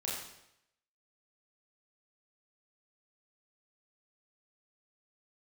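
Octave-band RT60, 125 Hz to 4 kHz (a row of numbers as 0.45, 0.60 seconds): 0.85, 0.80, 0.80, 0.80, 0.80, 0.75 seconds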